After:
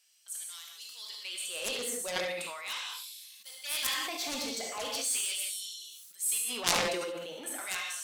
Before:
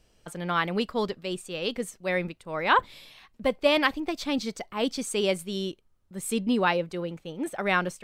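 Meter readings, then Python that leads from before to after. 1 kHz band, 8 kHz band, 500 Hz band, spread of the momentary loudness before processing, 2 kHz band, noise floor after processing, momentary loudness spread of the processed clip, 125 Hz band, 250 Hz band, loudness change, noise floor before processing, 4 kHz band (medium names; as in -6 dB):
-11.5 dB, +8.5 dB, -11.0 dB, 12 LU, -7.5 dB, -54 dBFS, 14 LU, -17.0 dB, -16.5 dB, -5.0 dB, -65 dBFS, -0.5 dB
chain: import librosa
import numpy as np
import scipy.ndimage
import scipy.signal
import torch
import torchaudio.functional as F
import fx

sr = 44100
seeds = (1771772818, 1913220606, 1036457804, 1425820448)

p1 = fx.dynamic_eq(x, sr, hz=1600.0, q=1.4, threshold_db=-40.0, ratio=4.0, max_db=-7)
p2 = fx.fold_sine(p1, sr, drive_db=10, ceiling_db=-7.5)
p3 = p1 + F.gain(torch.from_numpy(p2), -7.0).numpy()
p4 = fx.filter_lfo_highpass(p3, sr, shape='sine', hz=0.39, low_hz=470.0, high_hz=6600.0, q=0.79)
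p5 = fx.rev_gated(p4, sr, seeds[0], gate_ms=210, shape='flat', drr_db=0.0)
p6 = fx.cheby_harmonics(p5, sr, harmonics=(3,), levels_db=(-7,), full_scale_db=-4.0)
p7 = fx.high_shelf(p6, sr, hz=5200.0, db=11.0)
p8 = p7 + fx.echo_feedback(p7, sr, ms=71, feedback_pct=18, wet_db=-14, dry=0)
p9 = fx.sustainer(p8, sr, db_per_s=28.0)
y = F.gain(torch.from_numpy(p9), -4.5).numpy()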